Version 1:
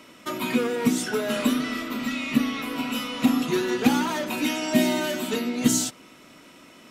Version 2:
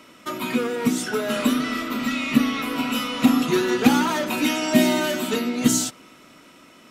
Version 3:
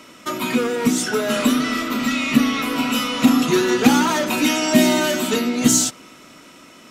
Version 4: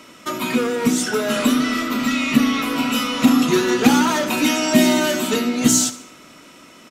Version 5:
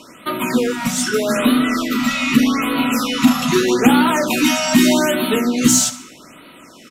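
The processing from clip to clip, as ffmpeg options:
-af "equalizer=f=1.3k:w=5.7:g=3.5,dynaudnorm=f=350:g=9:m=5dB"
-filter_complex "[0:a]equalizer=f=6.5k:t=o:w=0.86:g=4,asplit=2[a][b];[b]asoftclip=type=tanh:threshold=-18.5dB,volume=-7dB[c];[a][c]amix=inputs=2:normalize=0,volume=1dB"
-af "aecho=1:1:72|144|216|288:0.15|0.0658|0.029|0.0127"
-filter_complex "[0:a]asplit=2[a][b];[b]asoftclip=type=tanh:threshold=-11dB,volume=-4dB[c];[a][c]amix=inputs=2:normalize=0,afftfilt=real='re*(1-between(b*sr/1024,340*pow(6500/340,0.5+0.5*sin(2*PI*0.81*pts/sr))/1.41,340*pow(6500/340,0.5+0.5*sin(2*PI*0.81*pts/sr))*1.41))':imag='im*(1-between(b*sr/1024,340*pow(6500/340,0.5+0.5*sin(2*PI*0.81*pts/sr))/1.41,340*pow(6500/340,0.5+0.5*sin(2*PI*0.81*pts/sr))*1.41))':win_size=1024:overlap=0.75,volume=-1dB"

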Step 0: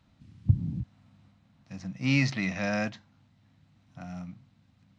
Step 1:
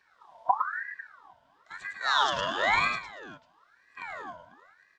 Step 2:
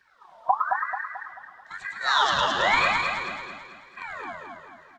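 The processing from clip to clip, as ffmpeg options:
-af "superequalizer=8b=3.55:10b=0.631:12b=1.78,aecho=1:1:108|235|496:0.562|0.133|0.112,aeval=exprs='val(0)*sin(2*PI*1300*n/s+1300*0.4/1*sin(2*PI*1*n/s))':c=same"
-filter_complex "[0:a]flanger=delay=0.6:depth=5:regen=39:speed=1.7:shape=sinusoidal,asplit=2[a][b];[b]aecho=0:1:219|438|657|876|1095|1314:0.596|0.274|0.126|0.058|0.0267|0.0123[c];[a][c]amix=inputs=2:normalize=0,volume=7dB"

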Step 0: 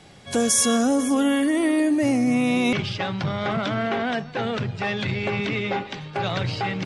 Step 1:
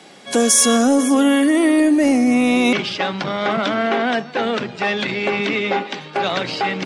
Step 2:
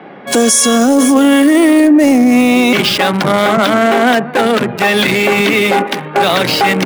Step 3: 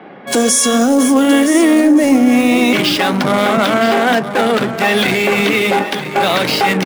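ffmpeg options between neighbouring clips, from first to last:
-af "highpass=f=210:w=0.5412,highpass=f=210:w=1.3066,acontrast=69"
-filter_complex "[0:a]acrossover=split=110|2200[a][b][c];[c]acrusher=bits=4:mix=0:aa=0.5[d];[a][b][d]amix=inputs=3:normalize=0,alimiter=level_in=13dB:limit=-1dB:release=50:level=0:latency=1,volume=-1dB"
-af "flanger=delay=8.5:depth=7.7:regen=-76:speed=1.2:shape=triangular,aecho=1:1:969:0.266,volume=2dB"

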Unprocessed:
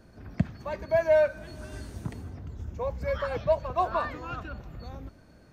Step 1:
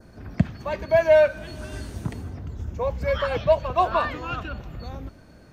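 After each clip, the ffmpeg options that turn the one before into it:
-af "adynamicequalizer=threshold=0.00224:dfrequency=3000:dqfactor=2.2:tfrequency=3000:tqfactor=2.2:attack=5:release=100:ratio=0.375:range=3.5:mode=boostabove:tftype=bell,volume=5.5dB"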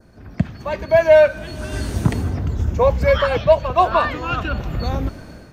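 -af "dynaudnorm=f=190:g=5:m=15dB,volume=-1dB"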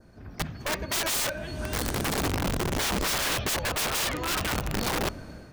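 -af "flanger=delay=5.9:depth=3.8:regen=-89:speed=1.2:shape=sinusoidal,aeval=exprs='(mod(13.3*val(0)+1,2)-1)/13.3':c=same"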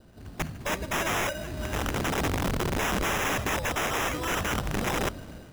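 -af "acrusher=samples=10:mix=1:aa=0.000001"

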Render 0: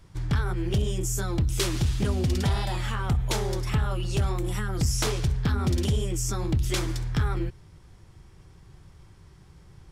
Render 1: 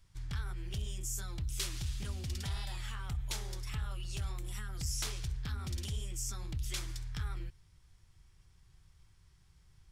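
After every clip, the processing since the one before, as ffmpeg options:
-af "equalizer=f=360:w=0.32:g=-15,volume=-7dB"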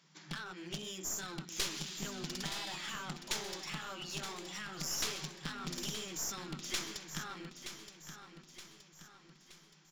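-filter_complex "[0:a]afftfilt=real='re*between(b*sr/4096,150,7500)':imag='im*between(b*sr/4096,150,7500)':win_size=4096:overlap=0.75,aeval=exprs='clip(val(0),-1,0.00398)':c=same,asplit=2[a][b];[b]aecho=0:1:922|1844|2766|3688|4610:0.335|0.164|0.0804|0.0394|0.0193[c];[a][c]amix=inputs=2:normalize=0,volume=6.5dB"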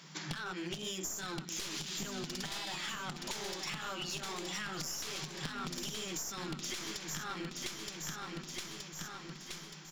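-af "alimiter=level_in=5dB:limit=-24dB:level=0:latency=1:release=145,volume=-5dB,acompressor=threshold=-51dB:ratio=6,volume=13.5dB"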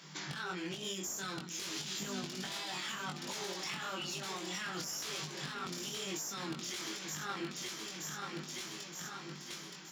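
-af "highpass=130,alimiter=level_in=7dB:limit=-24dB:level=0:latency=1:release=31,volume=-7dB,flanger=delay=20:depth=2.4:speed=0.96,volume=4dB"

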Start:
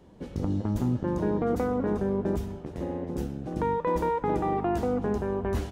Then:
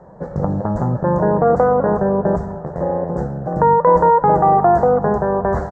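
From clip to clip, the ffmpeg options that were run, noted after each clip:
-af "firequalizer=gain_entry='entry(110,0);entry(150,11);entry(260,-5);entry(560,14);entry(1800,6);entry(2600,-29);entry(4200,-12);entry(7500,-6);entry(11000,-28)':delay=0.05:min_phase=1,volume=5dB"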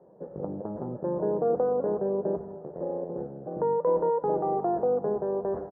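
-af "bandpass=f=380:t=q:w=1.9:csg=0,volume=-7dB"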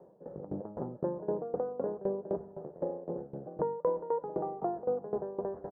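-af "acompressor=threshold=-31dB:ratio=2,aeval=exprs='val(0)*pow(10,-18*if(lt(mod(3.9*n/s,1),2*abs(3.9)/1000),1-mod(3.9*n/s,1)/(2*abs(3.9)/1000),(mod(3.9*n/s,1)-2*abs(3.9)/1000)/(1-2*abs(3.9)/1000))/20)':c=same,volume=3dB"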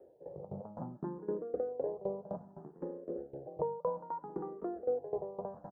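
-filter_complex "[0:a]asplit=2[a][b];[b]afreqshift=0.62[c];[a][c]amix=inputs=2:normalize=1,volume=-1dB"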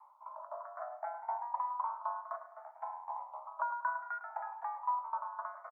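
-filter_complex "[0:a]asplit=2[a][b];[b]adelay=105,lowpass=f=1.5k:p=1,volume=-11dB,asplit=2[c][d];[d]adelay=105,lowpass=f=1.5k:p=1,volume=0.35,asplit=2[e][f];[f]adelay=105,lowpass=f=1.5k:p=1,volume=0.35,asplit=2[g][h];[h]adelay=105,lowpass=f=1.5k:p=1,volume=0.35[i];[a][c][e][g][i]amix=inputs=5:normalize=0,afreqshift=490,volume=-1dB"

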